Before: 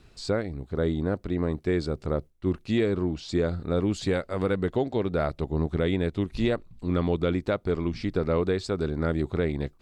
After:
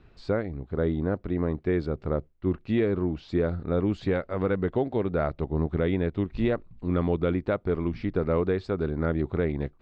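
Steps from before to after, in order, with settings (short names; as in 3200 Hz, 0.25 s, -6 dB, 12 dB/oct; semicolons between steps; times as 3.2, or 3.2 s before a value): LPF 2400 Hz 12 dB/oct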